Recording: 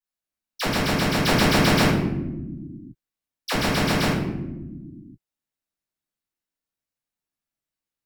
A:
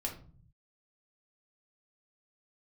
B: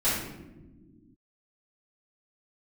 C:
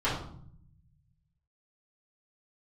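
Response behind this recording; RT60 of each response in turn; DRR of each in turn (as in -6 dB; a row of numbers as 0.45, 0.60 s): B; 0.45 s, not exponential, 0.60 s; -0.5, -13.5, -12.0 dB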